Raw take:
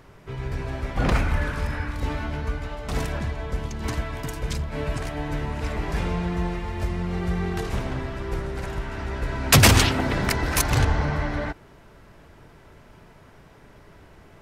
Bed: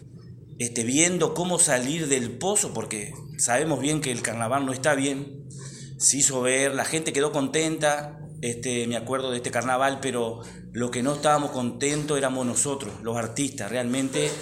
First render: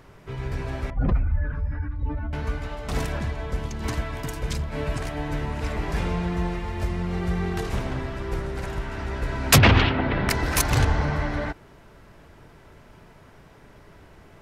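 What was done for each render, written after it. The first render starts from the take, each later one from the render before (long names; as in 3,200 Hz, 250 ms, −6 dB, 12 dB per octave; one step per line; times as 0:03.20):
0:00.90–0:02.33: expanding power law on the bin magnitudes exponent 1.9
0:09.58–0:10.29: low-pass filter 3,400 Hz 24 dB per octave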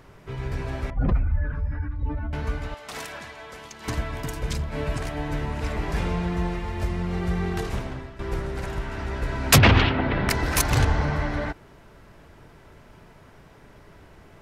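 0:02.74–0:03.88: high-pass filter 1,100 Hz 6 dB per octave
0:07.62–0:08.19: fade out, to −13 dB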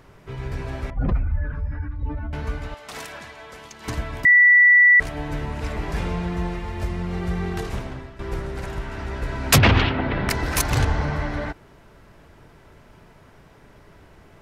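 0:04.25–0:05.00: beep over 1,960 Hz −9.5 dBFS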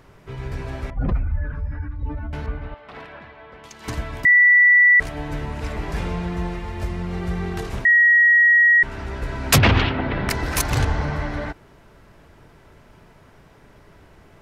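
0:02.46–0:03.64: high-frequency loss of the air 400 metres
0:07.85–0:08.83: beep over 1,900 Hz −10.5 dBFS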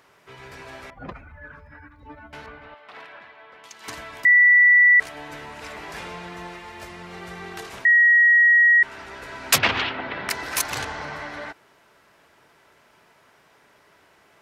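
high-pass filter 980 Hz 6 dB per octave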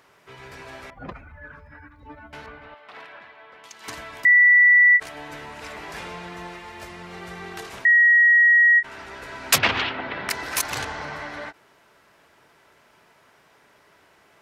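every ending faded ahead of time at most 430 dB per second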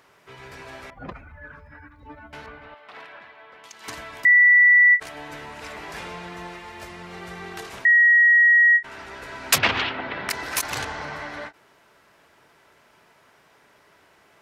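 every ending faded ahead of time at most 340 dB per second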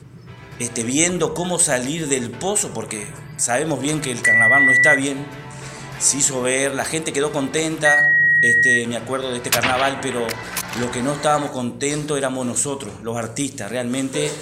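mix in bed +3 dB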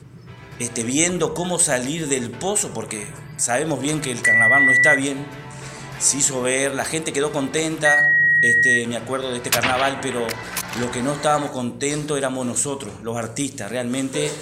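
level −1 dB
brickwall limiter −3 dBFS, peak gain reduction 1 dB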